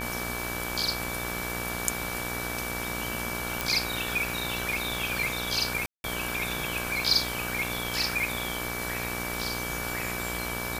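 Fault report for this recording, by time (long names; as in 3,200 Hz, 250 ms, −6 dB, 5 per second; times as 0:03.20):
mains buzz 60 Hz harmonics 29 −36 dBFS
whistle 2,300 Hz −36 dBFS
0:03.61: click
0:05.86–0:06.04: drop-out 181 ms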